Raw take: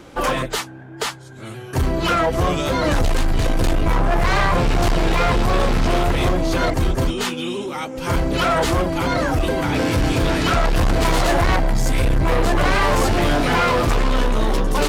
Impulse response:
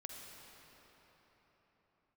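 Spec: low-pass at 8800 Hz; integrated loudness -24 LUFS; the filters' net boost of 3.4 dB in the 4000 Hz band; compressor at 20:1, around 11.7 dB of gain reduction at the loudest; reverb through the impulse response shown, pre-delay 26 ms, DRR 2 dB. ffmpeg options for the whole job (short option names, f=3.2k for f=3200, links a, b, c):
-filter_complex "[0:a]lowpass=8.8k,equalizer=f=4k:t=o:g=4.5,acompressor=threshold=-26dB:ratio=20,asplit=2[a][b];[1:a]atrim=start_sample=2205,adelay=26[c];[b][c]afir=irnorm=-1:irlink=0,volume=1dB[d];[a][d]amix=inputs=2:normalize=0,volume=4dB"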